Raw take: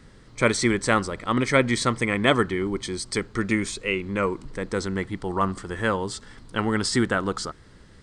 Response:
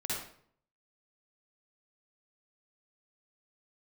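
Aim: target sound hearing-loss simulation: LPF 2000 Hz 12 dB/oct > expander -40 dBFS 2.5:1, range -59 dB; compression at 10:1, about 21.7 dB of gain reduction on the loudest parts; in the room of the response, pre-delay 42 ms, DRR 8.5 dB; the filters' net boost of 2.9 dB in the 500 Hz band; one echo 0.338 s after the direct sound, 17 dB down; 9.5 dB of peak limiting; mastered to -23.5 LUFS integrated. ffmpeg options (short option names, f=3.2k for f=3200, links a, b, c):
-filter_complex "[0:a]equalizer=f=500:t=o:g=3.5,acompressor=threshold=-35dB:ratio=10,alimiter=level_in=7dB:limit=-24dB:level=0:latency=1,volume=-7dB,aecho=1:1:338:0.141,asplit=2[a][b];[1:a]atrim=start_sample=2205,adelay=42[c];[b][c]afir=irnorm=-1:irlink=0,volume=-12.5dB[d];[a][d]amix=inputs=2:normalize=0,lowpass=2k,agate=range=-59dB:threshold=-40dB:ratio=2.5,volume=19dB"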